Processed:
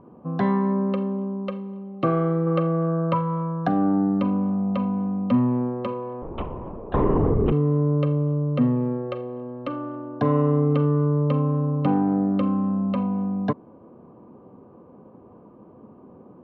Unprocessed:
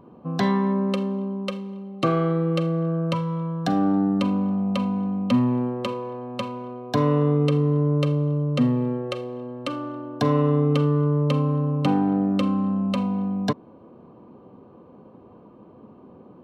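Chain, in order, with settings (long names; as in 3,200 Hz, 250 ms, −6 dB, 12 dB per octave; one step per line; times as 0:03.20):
0:02.46–0:03.68: dynamic equaliser 1,100 Hz, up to +7 dB, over −41 dBFS, Q 0.77
0:06.22–0:07.52: linear-prediction vocoder at 8 kHz whisper
low-pass filter 1,700 Hz 12 dB per octave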